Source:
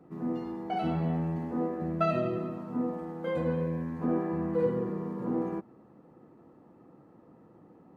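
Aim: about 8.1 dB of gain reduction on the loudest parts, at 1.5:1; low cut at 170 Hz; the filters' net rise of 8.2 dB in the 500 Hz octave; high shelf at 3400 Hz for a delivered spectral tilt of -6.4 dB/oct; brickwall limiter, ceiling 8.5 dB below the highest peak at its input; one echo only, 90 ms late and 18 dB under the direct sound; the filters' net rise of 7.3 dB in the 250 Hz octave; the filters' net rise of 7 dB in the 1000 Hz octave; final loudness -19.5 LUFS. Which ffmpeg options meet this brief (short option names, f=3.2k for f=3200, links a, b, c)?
-af "highpass=170,equalizer=f=250:t=o:g=8.5,equalizer=f=500:t=o:g=5.5,equalizer=f=1k:t=o:g=7,highshelf=f=3.4k:g=4.5,acompressor=threshold=-39dB:ratio=1.5,alimiter=level_in=0.5dB:limit=-24dB:level=0:latency=1,volume=-0.5dB,aecho=1:1:90:0.126,volume=14dB"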